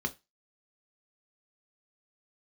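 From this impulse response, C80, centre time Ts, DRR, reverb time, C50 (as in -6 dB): 28.0 dB, 5 ms, 5.5 dB, 0.20 s, 21.5 dB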